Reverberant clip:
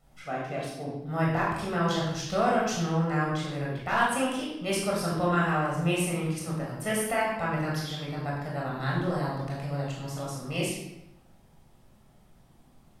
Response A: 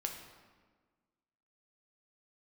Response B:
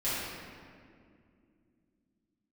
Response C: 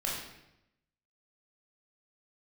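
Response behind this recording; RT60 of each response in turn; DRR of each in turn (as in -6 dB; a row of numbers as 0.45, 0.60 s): C; 1.5, 2.3, 0.85 s; 2.0, -13.0, -4.5 dB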